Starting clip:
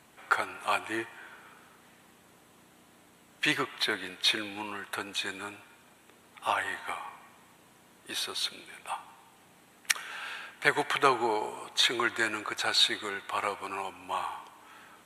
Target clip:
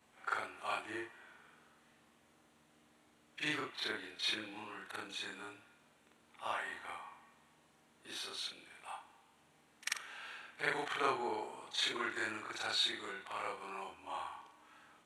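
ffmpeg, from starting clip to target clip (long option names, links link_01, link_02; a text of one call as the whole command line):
ffmpeg -i in.wav -af "afftfilt=real='re':imag='-im':win_size=4096:overlap=0.75,lowpass=9500,volume=-5dB" out.wav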